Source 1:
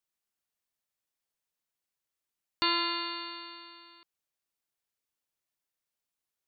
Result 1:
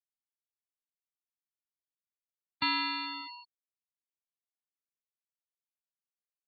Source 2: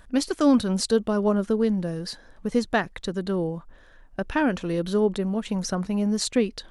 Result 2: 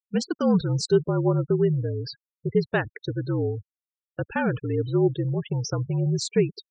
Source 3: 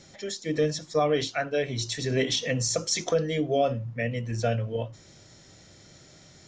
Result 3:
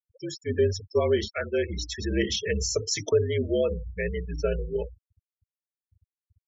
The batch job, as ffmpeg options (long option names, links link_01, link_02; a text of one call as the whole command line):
ffmpeg -i in.wav -af "highpass=frequency=110:width=0.5412,highpass=frequency=110:width=1.3066,equalizer=frequency=150:width_type=q:width=4:gain=4,equalizer=frequency=300:width_type=q:width=4:gain=-5,equalizer=frequency=480:width_type=q:width=4:gain=4,equalizer=frequency=720:width_type=q:width=4:gain=-5,equalizer=frequency=1200:width_type=q:width=4:gain=-4,equalizer=frequency=3900:width_type=q:width=4:gain=-4,lowpass=frequency=7900:width=0.5412,lowpass=frequency=7900:width=1.3066,afreqshift=-56,afftfilt=real='re*gte(hypot(re,im),0.0282)':imag='im*gte(hypot(re,im),0.0282)':win_size=1024:overlap=0.75" out.wav